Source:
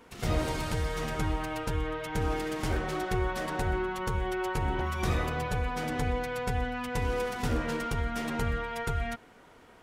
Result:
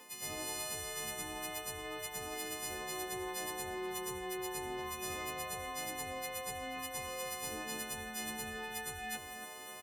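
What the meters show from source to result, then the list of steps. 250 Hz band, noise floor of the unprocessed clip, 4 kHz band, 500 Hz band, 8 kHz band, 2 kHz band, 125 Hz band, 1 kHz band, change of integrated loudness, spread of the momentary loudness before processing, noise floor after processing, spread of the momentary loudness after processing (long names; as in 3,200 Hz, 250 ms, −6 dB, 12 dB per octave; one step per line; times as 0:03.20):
−12.5 dB, −55 dBFS, −1.5 dB, −10.0 dB, +5.0 dB, −7.0 dB, −21.5 dB, −8.5 dB, −8.0 dB, 2 LU, −48 dBFS, 2 LU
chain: every partial snapped to a pitch grid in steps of 3 semitones
high-shelf EQ 11,000 Hz +9 dB
reversed playback
downward compressor 6 to 1, threshold −41 dBFS, peak gain reduction 16.5 dB
reversed playback
high-pass filter 280 Hz 6 dB per octave
double-tracking delay 22 ms −12 dB
delay that swaps between a low-pass and a high-pass 281 ms, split 2,200 Hz, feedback 50%, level −8 dB
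asymmetric clip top −36 dBFS, bottom −34 dBFS
Butterworth band-reject 1,400 Hz, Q 4.5
level +3 dB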